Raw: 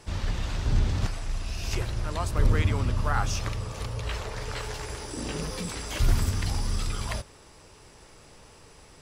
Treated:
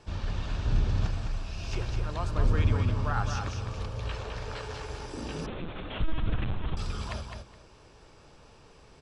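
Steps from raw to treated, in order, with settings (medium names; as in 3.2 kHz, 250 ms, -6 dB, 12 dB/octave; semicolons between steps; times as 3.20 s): distance through air 97 m; band-stop 2 kHz, Q 8.6; feedback delay 209 ms, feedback 20%, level -5.5 dB; 5.46–6.77 s: LPC vocoder at 8 kHz pitch kept; trim -3 dB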